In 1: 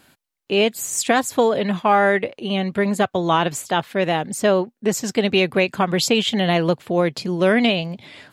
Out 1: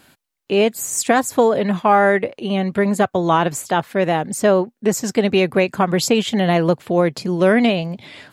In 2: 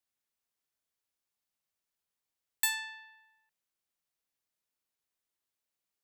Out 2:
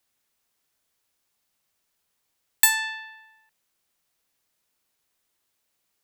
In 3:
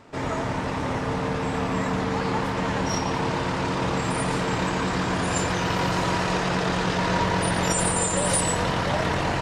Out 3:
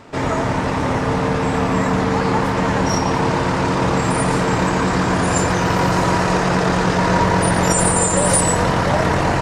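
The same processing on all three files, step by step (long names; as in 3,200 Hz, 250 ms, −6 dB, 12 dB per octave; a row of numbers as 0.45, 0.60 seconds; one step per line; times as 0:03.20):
dynamic equaliser 3,300 Hz, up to −7 dB, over −39 dBFS, Q 1.2
normalise the peak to −3 dBFS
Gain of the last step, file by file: +2.5, +13.0, +8.0 decibels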